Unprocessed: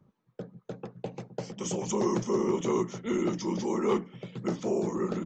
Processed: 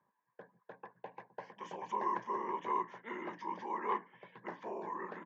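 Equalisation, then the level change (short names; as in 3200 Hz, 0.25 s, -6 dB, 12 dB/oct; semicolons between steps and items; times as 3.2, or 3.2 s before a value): double band-pass 1300 Hz, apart 0.71 oct; air absorption 130 m; +6.0 dB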